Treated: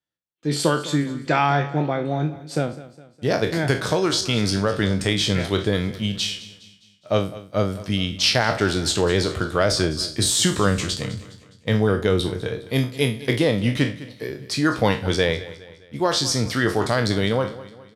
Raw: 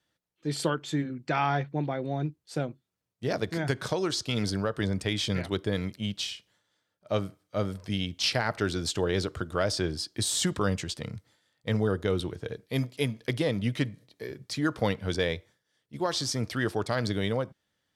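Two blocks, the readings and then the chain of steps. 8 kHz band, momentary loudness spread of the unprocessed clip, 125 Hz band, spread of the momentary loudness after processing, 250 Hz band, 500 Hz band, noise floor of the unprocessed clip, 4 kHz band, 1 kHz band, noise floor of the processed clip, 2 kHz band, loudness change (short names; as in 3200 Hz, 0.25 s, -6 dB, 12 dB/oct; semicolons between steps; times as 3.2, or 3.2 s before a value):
+9.0 dB, 9 LU, +7.5 dB, 10 LU, +8.0 dB, +8.0 dB, -81 dBFS, +9.0 dB, +8.5 dB, -53 dBFS, +8.5 dB, +8.0 dB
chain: spectral trails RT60 0.33 s; gate with hold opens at -55 dBFS; on a send: feedback echo 0.206 s, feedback 46%, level -17 dB; on the sum: gain +7 dB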